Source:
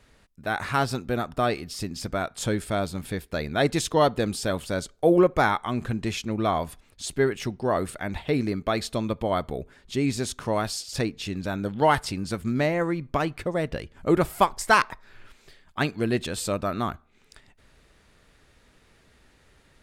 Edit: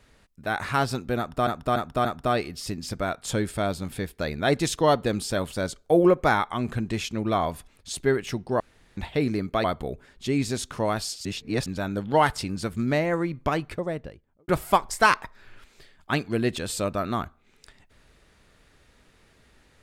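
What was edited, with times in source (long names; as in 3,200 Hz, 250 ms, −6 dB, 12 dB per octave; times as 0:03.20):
0:01.18–0:01.47: repeat, 4 plays
0:07.73–0:08.10: fill with room tone
0:08.77–0:09.32: remove
0:10.93–0:11.34: reverse
0:13.24–0:14.16: fade out and dull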